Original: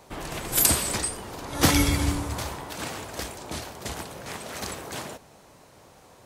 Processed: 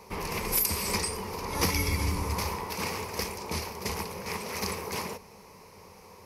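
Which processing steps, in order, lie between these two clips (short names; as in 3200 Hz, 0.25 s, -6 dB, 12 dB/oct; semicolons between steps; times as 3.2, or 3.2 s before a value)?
ripple EQ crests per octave 0.84, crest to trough 11 dB; compressor 6:1, threshold -24 dBFS, peak gain reduction 12 dB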